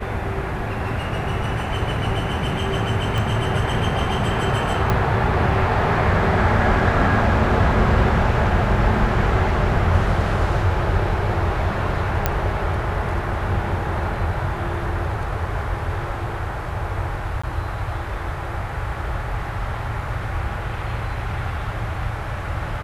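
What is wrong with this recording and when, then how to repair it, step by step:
0:03.18: click
0:04.90: click −8 dBFS
0:12.26: click −4 dBFS
0:17.42–0:17.43: drop-out 15 ms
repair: click removal
repair the gap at 0:17.42, 15 ms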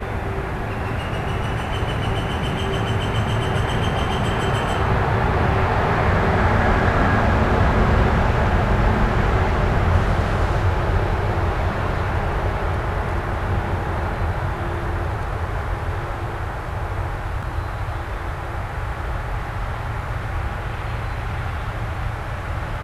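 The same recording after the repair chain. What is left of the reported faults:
0:03.18: click

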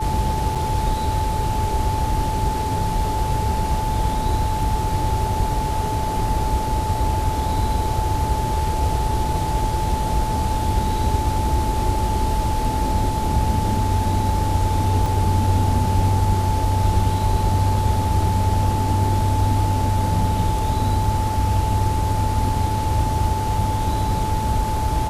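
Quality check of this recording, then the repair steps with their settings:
whistle 870 Hz −24 dBFS
0:00.55–0:00.56: drop-out 5.4 ms
0:15.06: drop-out 2.8 ms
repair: notch filter 870 Hz, Q 30
repair the gap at 0:00.55, 5.4 ms
repair the gap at 0:15.06, 2.8 ms

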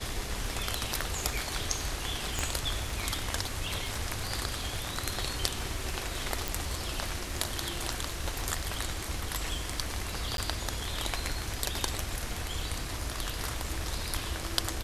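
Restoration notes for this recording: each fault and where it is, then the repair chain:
surface crackle 43 per second −40 dBFS
0:02.39: click −14 dBFS
0:06.48: click
0:10.37–0:10.38: drop-out 12 ms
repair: click removal
repair the gap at 0:10.37, 12 ms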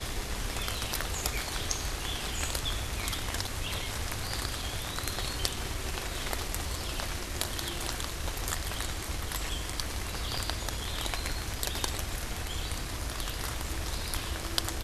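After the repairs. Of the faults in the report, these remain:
none of them is left

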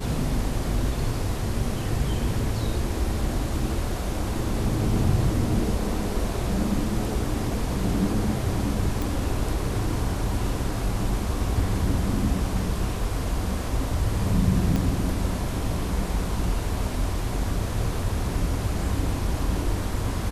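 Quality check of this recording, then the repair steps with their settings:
0:09.02: click
0:14.76: click −13 dBFS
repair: click removal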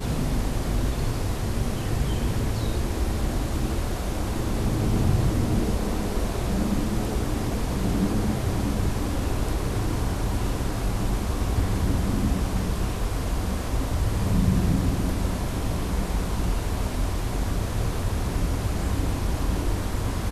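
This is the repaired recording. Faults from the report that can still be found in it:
0:14.76: click

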